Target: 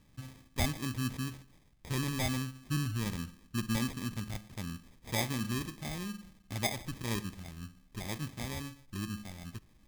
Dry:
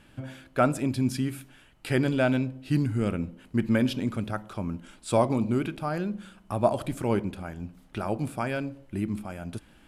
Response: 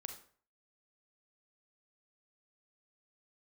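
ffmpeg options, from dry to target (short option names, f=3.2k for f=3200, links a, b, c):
-filter_complex "[0:a]acrusher=samples=31:mix=1:aa=0.000001,equalizer=f=560:w=0.51:g=-11.5,asplit=2[a][b];[1:a]atrim=start_sample=2205[c];[b][c]afir=irnorm=-1:irlink=0,volume=-12.5dB[d];[a][d]amix=inputs=2:normalize=0,volume=-5dB"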